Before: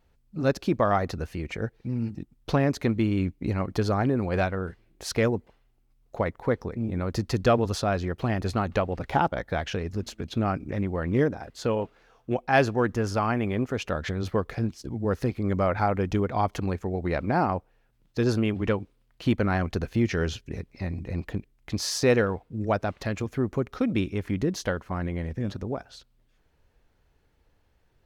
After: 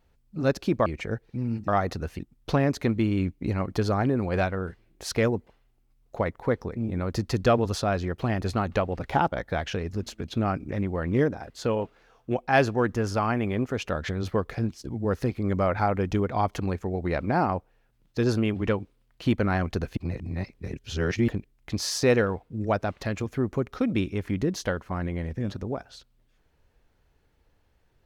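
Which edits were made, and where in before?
0.86–1.37 move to 2.19
19.97–21.28 reverse

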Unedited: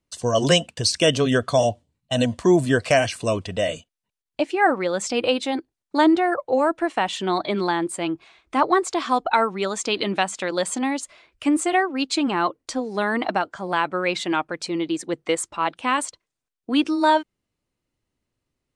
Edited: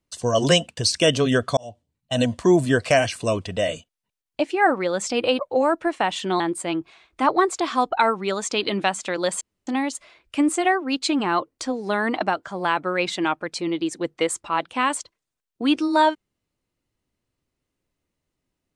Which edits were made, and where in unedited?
1.57–2.21 fade in
5.39–6.36 cut
7.37–7.74 cut
10.75 insert room tone 0.26 s

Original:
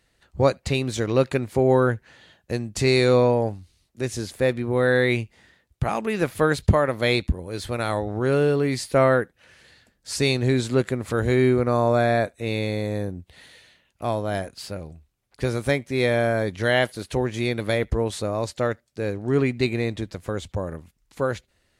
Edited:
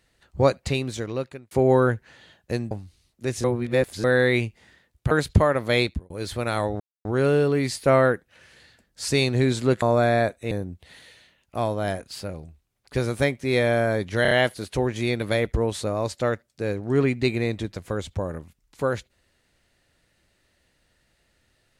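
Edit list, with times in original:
0.6–1.51 fade out linear
2.71–3.47 cut
4.2–4.8 reverse
5.87–6.44 cut
7.14–7.43 fade out
8.13 insert silence 0.25 s
10.9–11.79 cut
12.48–12.98 cut
16.69 stutter 0.03 s, 4 plays

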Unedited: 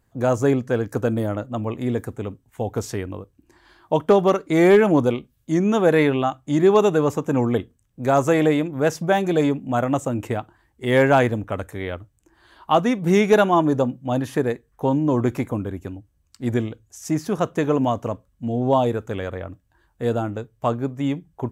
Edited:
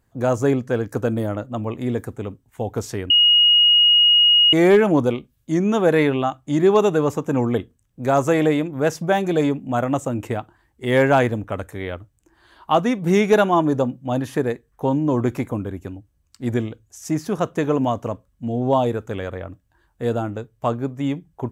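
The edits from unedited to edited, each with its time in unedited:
3.1–4.53 bleep 2880 Hz -10.5 dBFS

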